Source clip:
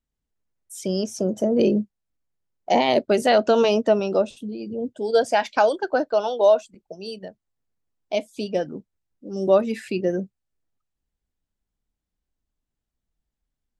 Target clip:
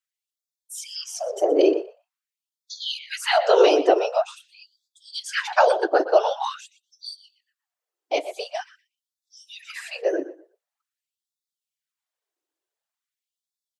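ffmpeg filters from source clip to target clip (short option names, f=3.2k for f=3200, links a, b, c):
-filter_complex "[0:a]asplit=2[a][b];[b]adelay=121,lowpass=f=3.7k:p=1,volume=-13dB,asplit=2[c][d];[d]adelay=121,lowpass=f=3.7k:p=1,volume=0.22,asplit=2[e][f];[f]adelay=121,lowpass=f=3.7k:p=1,volume=0.22[g];[a][c][e][g]amix=inputs=4:normalize=0,afftfilt=real='hypot(re,im)*cos(2*PI*random(0))':imag='hypot(re,im)*sin(2*PI*random(1))':win_size=512:overlap=0.75,afftfilt=real='re*gte(b*sr/1024,280*pow(3400/280,0.5+0.5*sin(2*PI*0.46*pts/sr)))':imag='im*gte(b*sr/1024,280*pow(3400/280,0.5+0.5*sin(2*PI*0.46*pts/sr)))':win_size=1024:overlap=0.75,volume=8.5dB"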